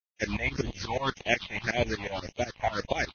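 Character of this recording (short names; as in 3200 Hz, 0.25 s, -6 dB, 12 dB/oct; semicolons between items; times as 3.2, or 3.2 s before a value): a quantiser's noise floor 6-bit, dither none; phasing stages 6, 1.8 Hz, lowest notch 330–1500 Hz; tremolo saw up 8.2 Hz, depth 100%; Vorbis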